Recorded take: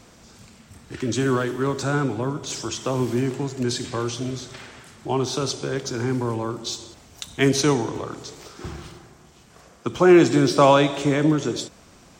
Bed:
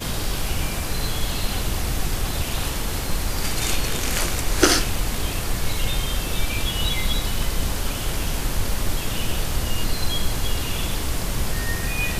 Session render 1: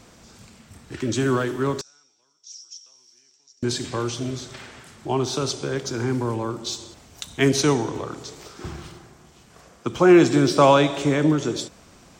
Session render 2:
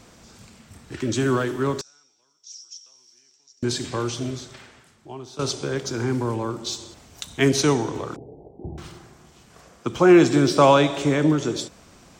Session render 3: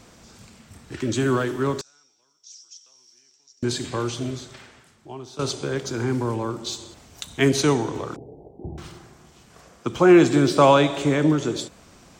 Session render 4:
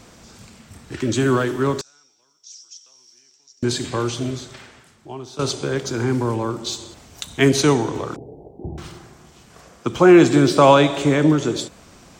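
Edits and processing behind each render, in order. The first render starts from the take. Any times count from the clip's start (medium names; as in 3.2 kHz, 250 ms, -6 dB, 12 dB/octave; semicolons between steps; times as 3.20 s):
1.81–3.63 s: band-pass filter 5.6 kHz, Q 15
4.25–5.39 s: fade out quadratic, to -15.5 dB; 8.16–8.78 s: steep low-pass 820 Hz 72 dB/octave
dynamic bell 5.5 kHz, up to -6 dB, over -50 dBFS, Q 6
trim +3.5 dB; peak limiter -2 dBFS, peak gain reduction 1.5 dB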